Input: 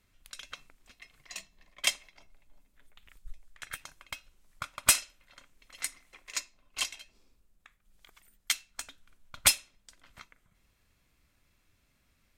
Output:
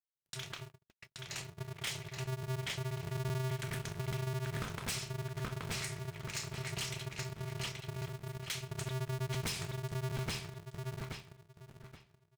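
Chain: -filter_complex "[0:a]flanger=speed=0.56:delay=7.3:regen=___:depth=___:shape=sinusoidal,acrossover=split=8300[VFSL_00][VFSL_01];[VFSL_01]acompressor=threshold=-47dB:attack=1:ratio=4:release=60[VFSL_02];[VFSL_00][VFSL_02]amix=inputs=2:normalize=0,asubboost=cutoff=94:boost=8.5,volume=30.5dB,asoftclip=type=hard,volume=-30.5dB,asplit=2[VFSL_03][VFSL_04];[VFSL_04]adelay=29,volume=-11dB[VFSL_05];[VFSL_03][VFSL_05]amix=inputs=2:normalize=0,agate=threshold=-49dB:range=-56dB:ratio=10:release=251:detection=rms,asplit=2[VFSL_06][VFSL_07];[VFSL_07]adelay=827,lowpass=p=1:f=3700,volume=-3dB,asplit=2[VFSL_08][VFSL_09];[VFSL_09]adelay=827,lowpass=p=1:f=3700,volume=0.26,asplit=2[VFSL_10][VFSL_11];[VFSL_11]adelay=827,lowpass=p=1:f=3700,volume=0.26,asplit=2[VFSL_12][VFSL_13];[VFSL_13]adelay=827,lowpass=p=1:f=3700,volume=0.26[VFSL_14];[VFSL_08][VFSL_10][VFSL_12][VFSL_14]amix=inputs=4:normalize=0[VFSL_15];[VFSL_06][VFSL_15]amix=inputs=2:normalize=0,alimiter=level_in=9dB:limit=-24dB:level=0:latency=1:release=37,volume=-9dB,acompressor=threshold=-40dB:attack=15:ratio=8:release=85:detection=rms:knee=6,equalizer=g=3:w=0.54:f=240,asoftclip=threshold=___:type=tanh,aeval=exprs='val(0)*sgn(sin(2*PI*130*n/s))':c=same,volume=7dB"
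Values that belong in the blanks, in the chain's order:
76, 7.2, -37.5dB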